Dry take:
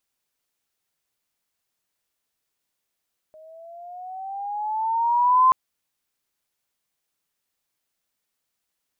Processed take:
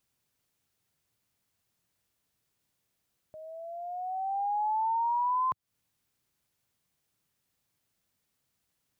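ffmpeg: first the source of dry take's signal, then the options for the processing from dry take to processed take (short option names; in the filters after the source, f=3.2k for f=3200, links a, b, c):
-f lavfi -i "aevalsrc='pow(10,(-11.5+32.5*(t/2.18-1))/20)*sin(2*PI*621*2.18/(9*log(2)/12)*(exp(9*log(2)/12*t/2.18)-1))':d=2.18:s=44100"
-af "equalizer=f=110:w=0.59:g=13,acompressor=threshold=-27dB:ratio=10"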